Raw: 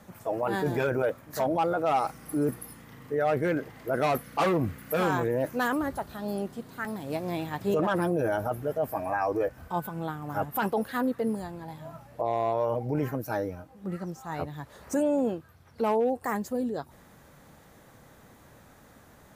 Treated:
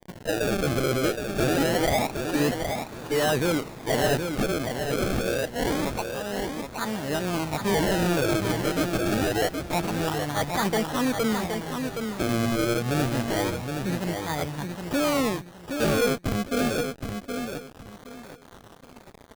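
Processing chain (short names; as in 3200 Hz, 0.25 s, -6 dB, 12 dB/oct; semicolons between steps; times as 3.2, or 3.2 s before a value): 4.36–6.77 HPF 650 Hz 6 dB/oct; bit-crush 8-bit; tube stage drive 26 dB, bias 0.35; decimation with a swept rate 32×, swing 100% 0.26 Hz; feedback echo 0.769 s, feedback 26%, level -6 dB; gain +6.5 dB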